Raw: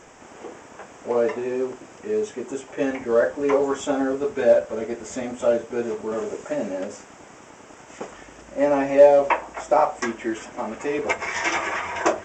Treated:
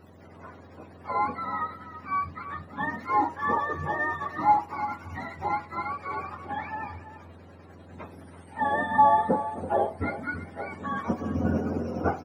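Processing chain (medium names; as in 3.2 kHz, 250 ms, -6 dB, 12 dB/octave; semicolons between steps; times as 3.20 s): spectrum inverted on a logarithmic axis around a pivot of 700 Hz; echo from a far wall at 57 m, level -12 dB; trim -4 dB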